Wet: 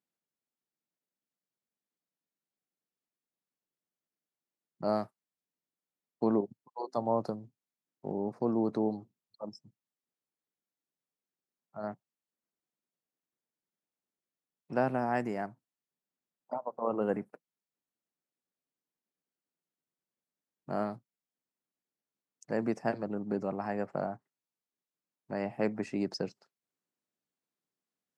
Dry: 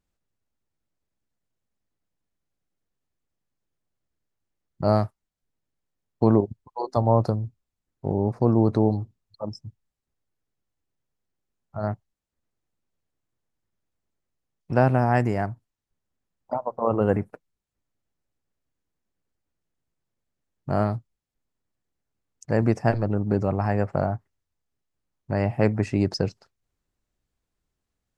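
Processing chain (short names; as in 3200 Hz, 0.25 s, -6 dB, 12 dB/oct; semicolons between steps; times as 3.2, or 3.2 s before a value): HPF 170 Hz 24 dB/oct; gain -8.5 dB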